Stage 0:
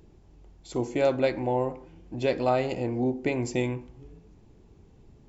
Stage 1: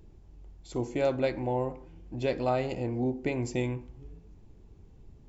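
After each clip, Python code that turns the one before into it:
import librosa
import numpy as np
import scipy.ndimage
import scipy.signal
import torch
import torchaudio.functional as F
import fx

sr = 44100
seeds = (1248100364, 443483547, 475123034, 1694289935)

y = fx.low_shelf(x, sr, hz=87.0, db=10.0)
y = F.gain(torch.from_numpy(y), -4.0).numpy()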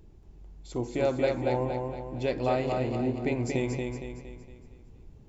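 y = fx.echo_feedback(x, sr, ms=231, feedback_pct=46, wet_db=-4.0)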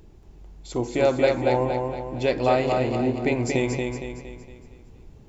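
y = fx.low_shelf(x, sr, hz=340.0, db=-5.0)
y = F.gain(torch.from_numpy(y), 8.0).numpy()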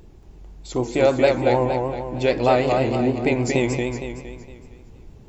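y = fx.vibrato(x, sr, rate_hz=6.5, depth_cents=64.0)
y = F.gain(torch.from_numpy(y), 3.0).numpy()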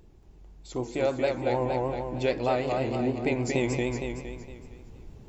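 y = fx.rider(x, sr, range_db=10, speed_s=0.5)
y = F.gain(torch.from_numpy(y), -7.0).numpy()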